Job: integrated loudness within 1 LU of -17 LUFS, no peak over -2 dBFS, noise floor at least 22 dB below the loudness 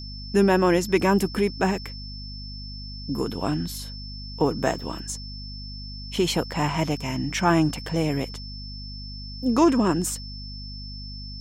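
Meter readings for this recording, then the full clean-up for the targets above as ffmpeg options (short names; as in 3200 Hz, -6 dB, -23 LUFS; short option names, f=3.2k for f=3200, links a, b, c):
hum 50 Hz; harmonics up to 250 Hz; hum level -35 dBFS; steady tone 5300 Hz; tone level -39 dBFS; loudness -24.0 LUFS; peak -7.0 dBFS; loudness target -17.0 LUFS
-> -af "bandreject=f=50:t=h:w=4,bandreject=f=100:t=h:w=4,bandreject=f=150:t=h:w=4,bandreject=f=200:t=h:w=4,bandreject=f=250:t=h:w=4"
-af "bandreject=f=5.3k:w=30"
-af "volume=7dB,alimiter=limit=-2dB:level=0:latency=1"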